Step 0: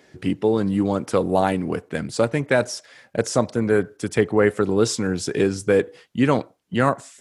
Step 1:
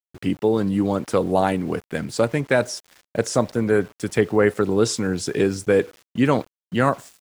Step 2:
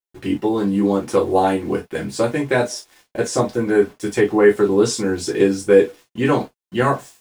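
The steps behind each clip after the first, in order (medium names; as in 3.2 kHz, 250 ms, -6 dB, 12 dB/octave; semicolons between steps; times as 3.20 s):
small samples zeroed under -41.5 dBFS; expander -47 dBFS
gated-style reverb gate 80 ms falling, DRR -3.5 dB; trim -3 dB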